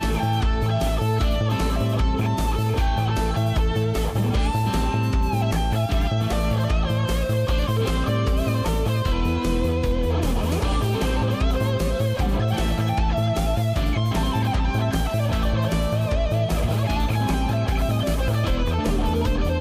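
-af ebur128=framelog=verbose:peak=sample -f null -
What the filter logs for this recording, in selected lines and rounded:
Integrated loudness:
  I:         -22.8 LUFS
  Threshold: -32.8 LUFS
Loudness range:
  LRA:         0.3 LU
  Threshold: -42.8 LUFS
  LRA low:   -23.0 LUFS
  LRA high:  -22.7 LUFS
Sample peak:
  Peak:      -12.8 dBFS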